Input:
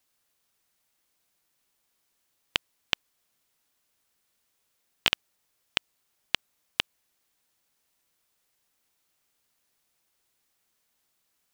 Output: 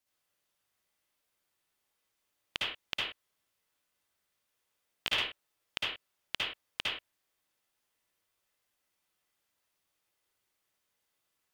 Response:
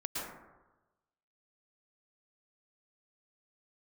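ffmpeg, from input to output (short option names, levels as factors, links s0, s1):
-filter_complex "[1:a]atrim=start_sample=2205,afade=t=out:st=0.42:d=0.01,atrim=end_sample=18963,asetrate=88200,aresample=44100[s0];[0:a][s0]afir=irnorm=-1:irlink=0,volume=0.841"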